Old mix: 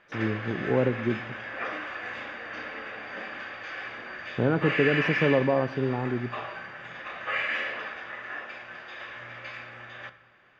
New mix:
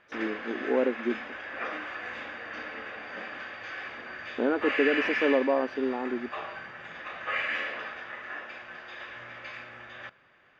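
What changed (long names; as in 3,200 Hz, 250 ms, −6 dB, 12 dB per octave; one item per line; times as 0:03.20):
speech: add linear-phase brick-wall high-pass 220 Hz
reverb: off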